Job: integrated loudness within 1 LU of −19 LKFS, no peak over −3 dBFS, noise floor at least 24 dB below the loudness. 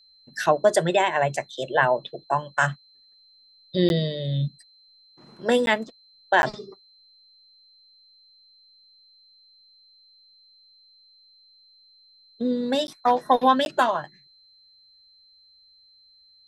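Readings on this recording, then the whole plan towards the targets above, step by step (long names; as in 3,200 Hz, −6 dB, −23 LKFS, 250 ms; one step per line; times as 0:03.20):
number of dropouts 5; longest dropout 11 ms; interfering tone 4,100 Hz; level of the tone −54 dBFS; integrated loudness −23.5 LKFS; sample peak −6.0 dBFS; target loudness −19.0 LKFS
→ repair the gap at 0:03.89/0:05.66/0:06.42/0:12.87/0:13.65, 11 ms
notch filter 4,100 Hz, Q 30
level +4.5 dB
brickwall limiter −3 dBFS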